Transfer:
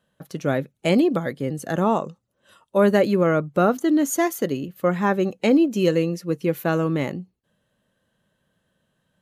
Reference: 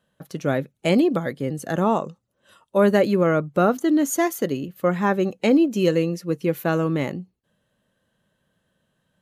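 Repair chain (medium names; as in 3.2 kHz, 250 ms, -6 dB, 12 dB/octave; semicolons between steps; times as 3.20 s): nothing to do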